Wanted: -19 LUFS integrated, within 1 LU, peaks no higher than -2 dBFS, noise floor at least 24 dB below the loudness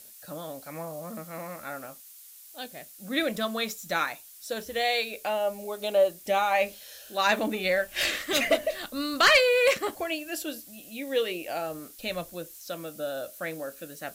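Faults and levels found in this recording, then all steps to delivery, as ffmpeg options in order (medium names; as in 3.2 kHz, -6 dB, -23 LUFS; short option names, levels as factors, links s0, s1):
noise floor -50 dBFS; noise floor target -52 dBFS; loudness -27.5 LUFS; peak level -11.0 dBFS; loudness target -19.0 LUFS
-> -af "afftdn=nr=6:nf=-50"
-af "volume=2.66"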